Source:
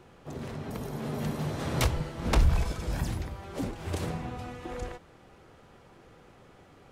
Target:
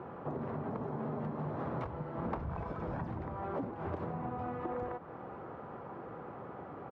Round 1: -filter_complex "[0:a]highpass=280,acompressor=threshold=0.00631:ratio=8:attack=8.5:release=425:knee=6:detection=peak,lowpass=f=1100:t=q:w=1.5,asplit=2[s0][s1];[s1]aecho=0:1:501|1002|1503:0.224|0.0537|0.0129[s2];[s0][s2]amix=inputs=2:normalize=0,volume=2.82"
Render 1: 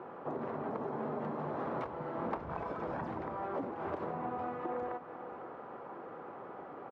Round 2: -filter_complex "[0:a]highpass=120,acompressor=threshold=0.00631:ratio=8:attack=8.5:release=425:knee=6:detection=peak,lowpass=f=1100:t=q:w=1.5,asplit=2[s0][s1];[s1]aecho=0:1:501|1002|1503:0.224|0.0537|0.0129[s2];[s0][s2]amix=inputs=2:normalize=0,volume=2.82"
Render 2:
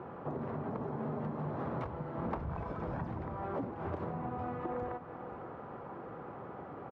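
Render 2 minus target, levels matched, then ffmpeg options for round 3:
echo-to-direct +9.5 dB
-filter_complex "[0:a]highpass=120,acompressor=threshold=0.00631:ratio=8:attack=8.5:release=425:knee=6:detection=peak,lowpass=f=1100:t=q:w=1.5,asplit=2[s0][s1];[s1]aecho=0:1:501|1002:0.075|0.018[s2];[s0][s2]amix=inputs=2:normalize=0,volume=2.82"

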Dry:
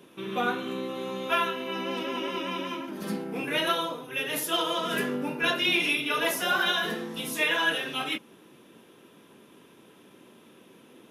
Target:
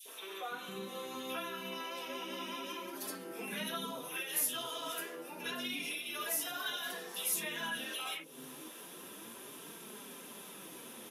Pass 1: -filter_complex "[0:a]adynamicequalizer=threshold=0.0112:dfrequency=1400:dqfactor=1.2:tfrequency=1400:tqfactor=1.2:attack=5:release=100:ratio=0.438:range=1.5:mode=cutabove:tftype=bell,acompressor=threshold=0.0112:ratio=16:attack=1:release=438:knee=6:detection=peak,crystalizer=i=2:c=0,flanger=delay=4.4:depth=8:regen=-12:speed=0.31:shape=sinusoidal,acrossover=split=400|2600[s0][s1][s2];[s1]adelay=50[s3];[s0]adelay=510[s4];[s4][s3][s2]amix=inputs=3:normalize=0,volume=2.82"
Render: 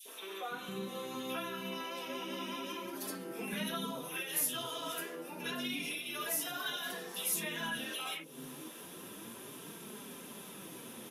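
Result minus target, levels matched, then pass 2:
250 Hz band +3.5 dB
-filter_complex "[0:a]adynamicequalizer=threshold=0.0112:dfrequency=1400:dqfactor=1.2:tfrequency=1400:tqfactor=1.2:attack=5:release=100:ratio=0.438:range=1.5:mode=cutabove:tftype=bell,acompressor=threshold=0.0112:ratio=16:attack=1:release=438:knee=6:detection=peak,highpass=f=300:p=1,crystalizer=i=2:c=0,flanger=delay=4.4:depth=8:regen=-12:speed=0.31:shape=sinusoidal,acrossover=split=400|2600[s0][s1][s2];[s1]adelay=50[s3];[s0]adelay=510[s4];[s4][s3][s2]amix=inputs=3:normalize=0,volume=2.82"

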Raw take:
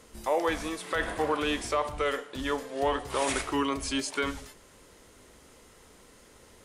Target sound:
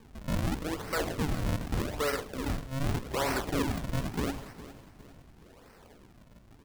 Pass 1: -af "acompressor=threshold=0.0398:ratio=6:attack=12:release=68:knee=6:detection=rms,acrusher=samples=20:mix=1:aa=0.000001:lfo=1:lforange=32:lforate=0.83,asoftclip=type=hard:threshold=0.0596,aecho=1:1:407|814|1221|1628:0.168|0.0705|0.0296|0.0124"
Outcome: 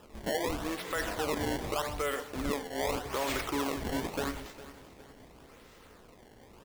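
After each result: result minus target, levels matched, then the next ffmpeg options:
decimation with a swept rate: distortion -13 dB; compression: peak gain reduction +6 dB
-af "acompressor=threshold=0.0398:ratio=6:attack=12:release=68:knee=6:detection=rms,acrusher=samples=62:mix=1:aa=0.000001:lfo=1:lforange=99.2:lforate=0.83,asoftclip=type=hard:threshold=0.0596,aecho=1:1:407|814|1221|1628:0.168|0.0705|0.0296|0.0124"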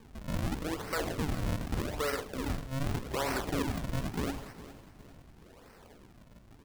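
compression: peak gain reduction +6 dB
-af "acrusher=samples=62:mix=1:aa=0.000001:lfo=1:lforange=99.2:lforate=0.83,asoftclip=type=hard:threshold=0.0596,aecho=1:1:407|814|1221|1628:0.168|0.0705|0.0296|0.0124"

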